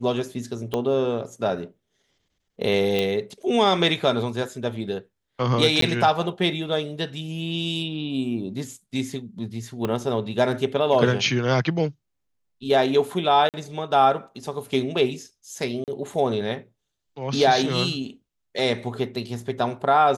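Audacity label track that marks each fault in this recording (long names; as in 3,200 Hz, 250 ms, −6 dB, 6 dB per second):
0.740000	0.740000	click −13 dBFS
2.990000	2.990000	click −11 dBFS
5.810000	5.820000	drop-out 13 ms
9.850000	9.850000	click −13 dBFS
13.490000	13.540000	drop-out 48 ms
15.840000	15.880000	drop-out 38 ms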